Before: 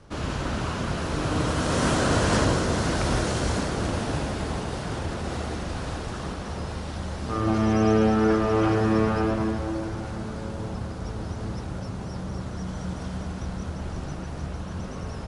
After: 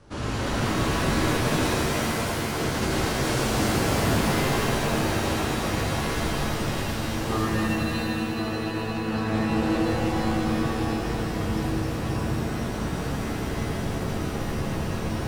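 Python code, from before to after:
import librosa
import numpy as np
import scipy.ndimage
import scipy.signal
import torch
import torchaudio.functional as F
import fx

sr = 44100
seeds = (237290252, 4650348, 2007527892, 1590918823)

y = fx.over_compress(x, sr, threshold_db=-26.0, ratio=-0.5)
y = fx.rev_shimmer(y, sr, seeds[0], rt60_s=2.9, semitones=7, shimmer_db=-2, drr_db=-3.5)
y = y * librosa.db_to_amplitude(-4.5)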